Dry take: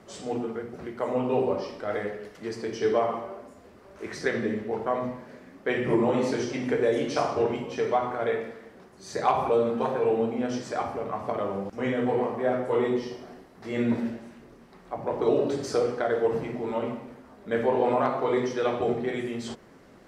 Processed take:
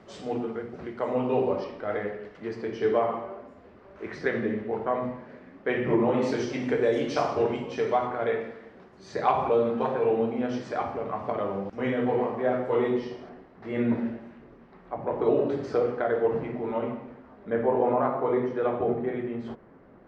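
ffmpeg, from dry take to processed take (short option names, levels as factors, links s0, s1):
-af "asetnsamples=n=441:p=0,asendcmd='1.64 lowpass f 2900;6.22 lowpass f 5600;8.07 lowpass f 3700;13.29 lowpass f 2400;17.5 lowpass f 1500',lowpass=4500"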